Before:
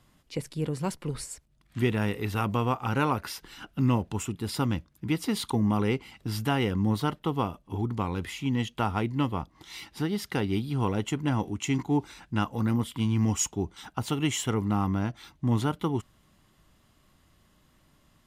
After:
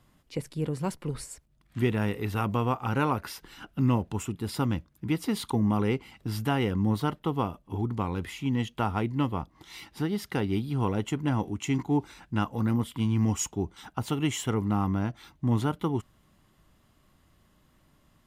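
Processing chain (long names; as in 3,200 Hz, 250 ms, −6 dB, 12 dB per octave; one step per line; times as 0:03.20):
parametric band 5,300 Hz −3.5 dB 2.6 octaves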